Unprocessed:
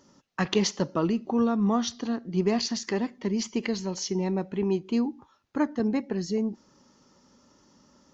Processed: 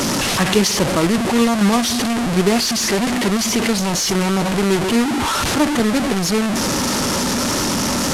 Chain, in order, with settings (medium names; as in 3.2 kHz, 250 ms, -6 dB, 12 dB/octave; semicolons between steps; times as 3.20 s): one-bit delta coder 64 kbps, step -21.5 dBFS; trim +8.5 dB